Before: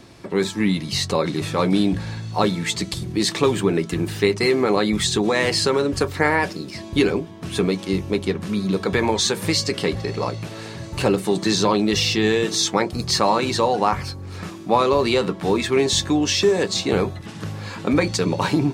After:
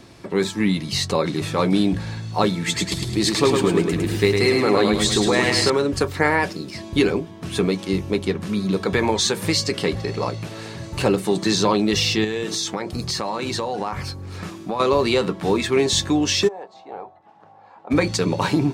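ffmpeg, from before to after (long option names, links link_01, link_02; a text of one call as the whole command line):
ffmpeg -i in.wav -filter_complex "[0:a]asettb=1/sr,asplit=3[link_01][link_02][link_03];[link_01]atrim=end=2.574[link_04];[link_02]atrim=start=2.57:end=5.7,asetpts=PTS-STARTPTS,afade=type=in:duration=0.004:curve=qsin,afade=type=out:start_time=3.126:duration=0.004:curve=qsin,aecho=1:1:106|212|318|424|530|636:0.631|0.309|0.151|0.0742|0.0364|0.0178,atrim=end_sample=138033[link_05];[link_03]atrim=start=5.696[link_06];[link_04][link_05]acrossfade=duration=0.004:curve1=hsin:curve2=qsin[link_07];[link_07][link_06]acrossfade=duration=0.004:curve1=qsin:curve2=hsin,asettb=1/sr,asplit=3[link_08][link_09][link_10];[link_08]atrim=end=12.244[link_11];[link_09]atrim=start=12.24:end=14.8,asetpts=PTS-STARTPTS,afade=type=in:duration=0.004:curve=qsin,afade=type=out:start_time=2.556:duration=0.004:curve=qsin,acompressor=threshold=-21dB:ratio=6:attack=3.2:release=140:knee=1:detection=peak[link_12];[link_10]atrim=start=14.796[link_13];[link_11][link_12]acrossfade=duration=0.004:curve1=hsin:curve2=qsin[link_14];[link_14][link_13]acrossfade=duration=0.004:curve1=qsin:curve2=hsin,asplit=3[link_15][link_16][link_17];[link_15]afade=type=out:start_time=16.47:duration=0.02[link_18];[link_16]bandpass=frequency=790:width_type=q:width=6,afade=type=in:start_time=16.47:duration=0.02,afade=type=out:start_time=17.9:duration=0.02[link_19];[link_17]afade=type=in:start_time=17.9:duration=0.02[link_20];[link_18][link_19][link_20]amix=inputs=3:normalize=0" out.wav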